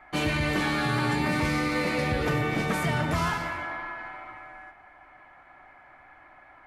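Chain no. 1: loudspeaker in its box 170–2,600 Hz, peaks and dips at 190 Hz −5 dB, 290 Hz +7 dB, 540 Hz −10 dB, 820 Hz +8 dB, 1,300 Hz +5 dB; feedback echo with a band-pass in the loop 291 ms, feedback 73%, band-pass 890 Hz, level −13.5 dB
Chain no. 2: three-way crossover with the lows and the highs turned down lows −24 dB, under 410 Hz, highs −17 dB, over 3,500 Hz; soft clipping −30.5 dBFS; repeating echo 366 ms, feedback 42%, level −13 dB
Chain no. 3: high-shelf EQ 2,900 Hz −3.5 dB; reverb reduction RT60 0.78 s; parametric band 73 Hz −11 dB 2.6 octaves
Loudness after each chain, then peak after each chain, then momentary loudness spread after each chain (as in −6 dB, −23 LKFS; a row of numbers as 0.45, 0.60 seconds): −25.5, −34.0, −31.5 LKFS; −11.5, −28.0, −17.0 dBFS; 16, 19, 15 LU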